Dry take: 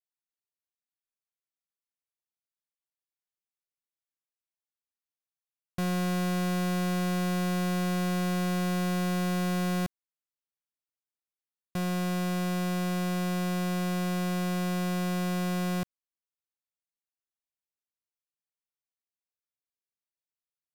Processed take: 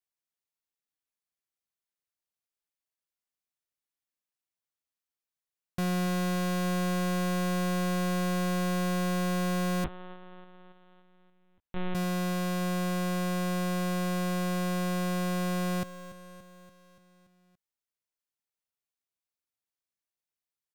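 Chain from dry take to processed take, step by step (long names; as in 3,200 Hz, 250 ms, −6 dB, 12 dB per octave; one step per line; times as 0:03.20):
on a send: repeating echo 287 ms, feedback 60%, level −14.5 dB
0:09.84–0:11.95: on the sum: linear-prediction vocoder at 8 kHz pitch kept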